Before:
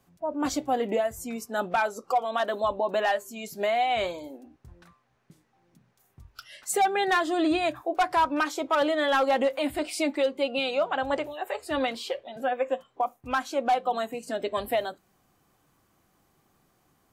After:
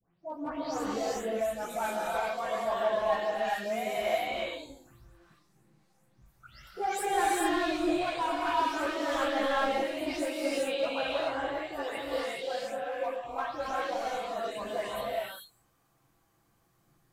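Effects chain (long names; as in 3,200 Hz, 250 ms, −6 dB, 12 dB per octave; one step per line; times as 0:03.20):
every frequency bin delayed by itself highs late, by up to 285 ms
hard clipping −21 dBFS, distortion −16 dB
multi-voice chorus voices 6, 1.2 Hz, delay 17 ms, depth 3 ms
reverb whose tail is shaped and stops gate 450 ms rising, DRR −4.5 dB
level −5.5 dB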